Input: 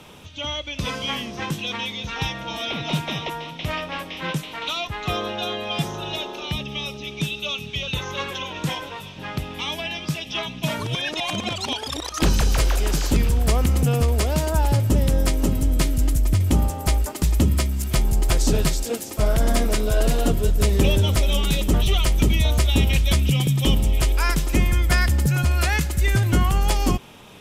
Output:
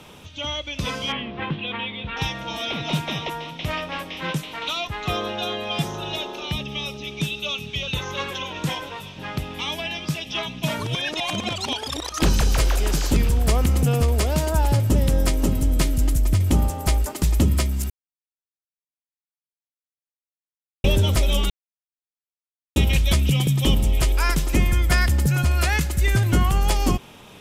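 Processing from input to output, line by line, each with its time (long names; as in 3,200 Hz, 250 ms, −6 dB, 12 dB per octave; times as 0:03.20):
0:01.12–0:02.17: Butterworth low-pass 3,400 Hz
0:17.90–0:20.84: silence
0:21.50–0:22.76: silence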